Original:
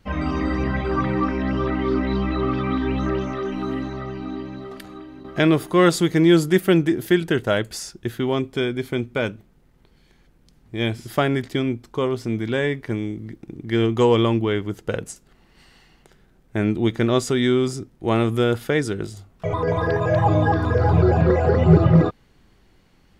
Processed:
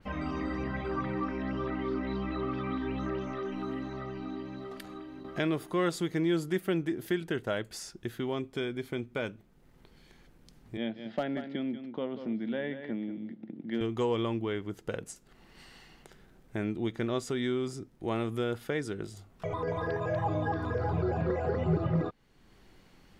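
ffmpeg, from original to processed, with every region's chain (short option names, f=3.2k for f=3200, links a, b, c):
-filter_complex "[0:a]asettb=1/sr,asplit=3[a][b][c];[a]atrim=end=10.774[d];[b]atrim=start=10.77:end=13.81,asetpts=PTS-STARTPTS,afade=t=in:d=0.004:c=qsin,afade=t=out:st=3.036:d=0.004:c=qsin,highpass=f=170:w=0.5412,highpass=f=170:w=1.3066,equalizer=f=220:t=q:w=4:g=6,equalizer=f=400:t=q:w=4:g=-8,equalizer=f=580:t=q:w=4:g=4,equalizer=f=1.1k:t=q:w=4:g=-10,equalizer=f=1.5k:t=q:w=4:g=-3,equalizer=f=2.4k:t=q:w=4:g=-7,lowpass=f=3.3k:w=0.5412,lowpass=f=3.3k:w=1.3066,asoftclip=type=hard:threshold=-11.5dB,aecho=1:1:186:0.266,atrim=end_sample=134064[e];[c]atrim=start=13.806[f];[d][e]acrossfade=d=0.004:c1=hsin:c2=qsin[g];[g][f]acrossfade=d=0.004:c1=qsin:c2=hsin,equalizer=f=61:t=o:w=2.2:g=-4.5,acompressor=threshold=-49dB:ratio=1.5,adynamicequalizer=threshold=0.00316:dfrequency=3500:dqfactor=0.7:tfrequency=3500:tqfactor=0.7:attack=5:release=100:ratio=0.375:range=1.5:mode=cutabove:tftype=highshelf"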